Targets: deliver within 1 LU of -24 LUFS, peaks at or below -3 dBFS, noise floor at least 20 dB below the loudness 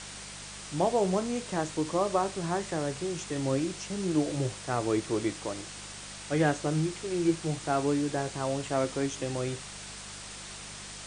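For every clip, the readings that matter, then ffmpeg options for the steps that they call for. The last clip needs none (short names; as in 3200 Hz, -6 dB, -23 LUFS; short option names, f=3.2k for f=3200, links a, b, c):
hum 50 Hz; harmonics up to 200 Hz; hum level -51 dBFS; noise floor -43 dBFS; noise floor target -51 dBFS; loudness -31.0 LUFS; peak -12.5 dBFS; loudness target -24.0 LUFS
-> -af "bandreject=f=50:t=h:w=4,bandreject=f=100:t=h:w=4,bandreject=f=150:t=h:w=4,bandreject=f=200:t=h:w=4"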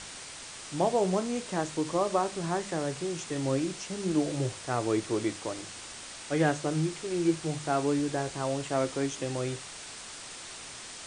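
hum none; noise floor -44 dBFS; noise floor target -52 dBFS
-> -af "afftdn=nr=8:nf=-44"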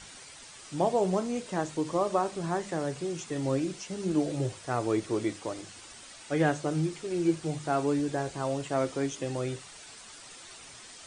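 noise floor -49 dBFS; noise floor target -51 dBFS
-> -af "afftdn=nr=6:nf=-49"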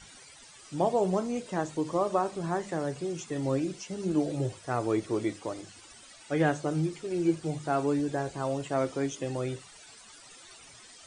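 noise floor -52 dBFS; loudness -31.0 LUFS; peak -12.5 dBFS; loudness target -24.0 LUFS
-> -af "volume=7dB"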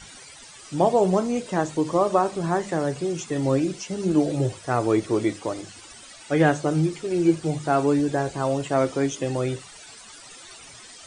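loudness -24.0 LUFS; peak -5.5 dBFS; noise floor -45 dBFS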